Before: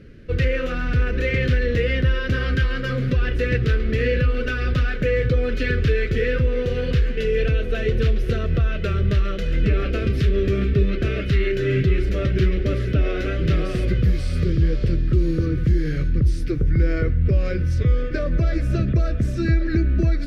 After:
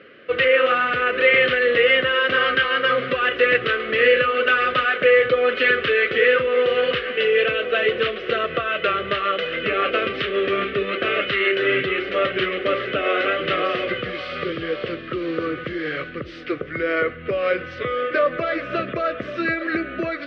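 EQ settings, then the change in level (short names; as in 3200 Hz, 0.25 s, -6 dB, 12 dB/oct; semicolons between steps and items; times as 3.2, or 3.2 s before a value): speaker cabinet 500–3600 Hz, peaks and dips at 540 Hz +5 dB, 780 Hz +6 dB, 1200 Hz +10 dB, 2000 Hz +4 dB, 3000 Hz +7 dB; +6.0 dB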